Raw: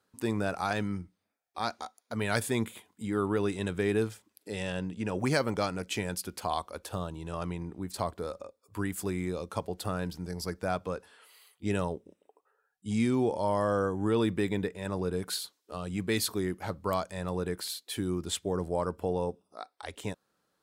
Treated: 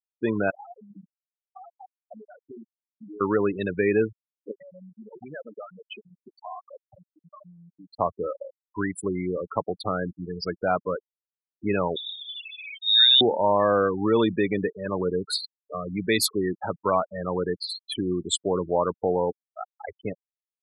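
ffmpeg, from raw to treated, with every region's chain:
-filter_complex "[0:a]asettb=1/sr,asplit=3[s0][s1][s2];[s0]atrim=end=0.504[s3];[s1]atrim=start=0.5:end=3.21,asetpts=PTS-STARTPTS,afade=t=in:d=0.004:c=qsin,afade=t=out:st=2.706:d=0.004:c=qsin,equalizer=f=760:w=0.56:g=4,bandreject=f=50:t=h:w=6,bandreject=f=100:t=h:w=6,bandreject=f=150:t=h:w=6,bandreject=f=200:t=h:w=6,bandreject=f=250:t=h:w=6,bandreject=f=300:t=h:w=6,bandreject=f=350:t=h:w=6,bandreject=f=400:t=h:w=6,bandreject=f=450:t=h:w=6,acompressor=threshold=0.00708:ratio=6:attack=3.2:release=140:knee=1:detection=peak[s4];[s2]atrim=start=3.206[s5];[s3][s4]acrossfade=d=0.004:c1=hsin:c2=qsin[s6];[s6][s5]acrossfade=d=0.004:c1=qsin:c2=hsin,asettb=1/sr,asplit=3[s7][s8][s9];[s7]atrim=end=4.514[s10];[s8]atrim=start=4.51:end=7.99,asetpts=PTS-STARTPTS,afade=t=in:d=0.004:c=qsin,afade=t=out:st=3.476:d=0.004:c=qsin,acompressor=threshold=0.01:ratio=3:attack=3.2:release=140:knee=1:detection=peak,lowshelf=f=410:g=-6[s11];[s9]atrim=start=7.986[s12];[s10][s11]acrossfade=d=0.004:c1=hsin:c2=qsin[s13];[s13][s12]acrossfade=d=0.004:c1=qsin:c2=hsin,asettb=1/sr,asplit=3[s14][s15][s16];[s14]atrim=end=11.964[s17];[s15]atrim=start=11.96:end=13.21,asetpts=PTS-STARTPTS,afade=t=in:d=0.004:c=qsin,afade=t=out:st=1.246:d=0.004:c=qsin,aeval=exprs='val(0)+0.5*0.0141*sgn(val(0))':c=same,lowpass=f=3300:t=q:w=0.5098,lowpass=f=3300:t=q:w=0.6013,lowpass=f=3300:t=q:w=0.9,lowpass=f=3300:t=q:w=2.563,afreqshift=-3900[s18];[s16]atrim=start=13.206[s19];[s17][s18]acrossfade=d=0.004:c1=hsin:c2=qsin[s20];[s20][s19]acrossfade=d=0.004:c1=qsin:c2=hsin,highpass=97,afftfilt=real='re*gte(hypot(re,im),0.0316)':imag='im*gte(hypot(re,im),0.0316)':win_size=1024:overlap=0.75,lowshelf=f=240:g=-8.5,volume=2.82"

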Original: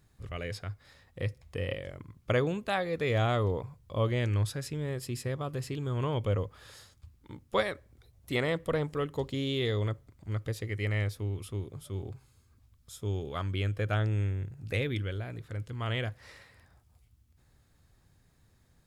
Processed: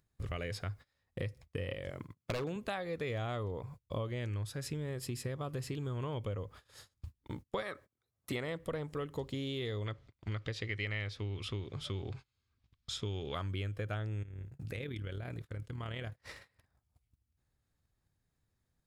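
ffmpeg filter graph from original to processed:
-filter_complex "[0:a]asettb=1/sr,asplit=3[s0][s1][s2];[s0]atrim=end=1.904[s3];[s1]atrim=start=1.9:end=2.56,asetpts=PTS-STARTPTS,afade=t=in:d=0.004:c=qsin,afade=t=out:st=0.656:d=0.004:c=qsin,highpass=120,aeval=exprs='0.0631*(abs(mod(val(0)/0.0631+3,4)-2)-1)':c=same[s4];[s2]atrim=start=2.556[s5];[s3][s4]acrossfade=d=0.004:c1=hsin:c2=qsin[s6];[s6][s5]acrossfade=d=0.004:c1=qsin:c2=hsin,asettb=1/sr,asplit=3[s7][s8][s9];[s7]atrim=end=7.624[s10];[s8]atrim=start=7.62:end=8.32,asetpts=PTS-STARTPTS,afade=t=in:d=0.004:c=qsin,afade=t=out:st=0.696:d=0.004:c=qsin,highpass=140,equalizer=f=1300:w=2.8:g=10,bandreject=f=1400:w=12[s11];[s9]atrim=start=8.316[s12];[s10][s11]acrossfade=d=0.004:c1=hsin:c2=qsin[s13];[s13][s12]acrossfade=d=0.004:c1=qsin:c2=hsin,asettb=1/sr,asplit=3[s14][s15][s16];[s14]atrim=end=9.864[s17];[s15]atrim=start=9.86:end=13.35,asetpts=PTS-STARTPTS,afade=t=in:d=0.004:c=qsin,afade=t=out:st=3.486:d=0.004:c=qsin,lowpass=4600,equalizer=f=3600:t=o:w=2.7:g=11[s18];[s16]atrim=start=13.346[s19];[s17][s18]acrossfade=d=0.004:c1=hsin:c2=qsin[s20];[s20][s19]acrossfade=d=0.004:c1=qsin:c2=hsin,asettb=1/sr,asplit=3[s21][s22][s23];[s21]atrim=end=14.234[s24];[s22]atrim=start=14.23:end=16.22,asetpts=PTS-STARTPTS,afade=t=in:d=0.004:c=qsin,afade=t=out:st=1.986:d=0.004:c=qsin,acompressor=threshold=0.00794:ratio=3:attack=3.2:release=140:knee=1:detection=peak,tremolo=f=38:d=0.519[s25];[s23]atrim=start=16.216[s26];[s24][s25]acrossfade=d=0.004:c1=hsin:c2=qsin[s27];[s27][s26]acrossfade=d=0.004:c1=qsin:c2=hsin,acompressor=mode=upward:threshold=0.00794:ratio=2.5,agate=range=0.0282:threshold=0.00447:ratio=16:detection=peak,acompressor=threshold=0.01:ratio=6,volume=1.68"

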